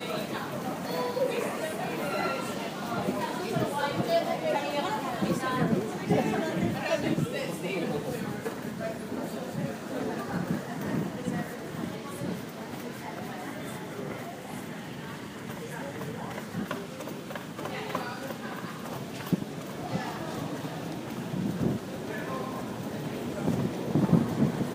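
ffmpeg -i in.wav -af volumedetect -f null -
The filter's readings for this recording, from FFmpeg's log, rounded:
mean_volume: -31.7 dB
max_volume: -8.6 dB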